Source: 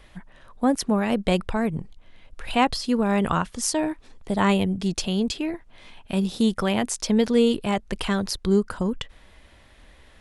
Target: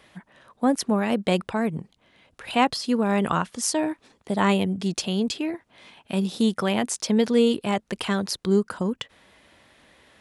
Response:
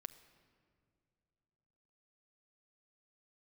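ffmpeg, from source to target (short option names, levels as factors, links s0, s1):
-af "highpass=140"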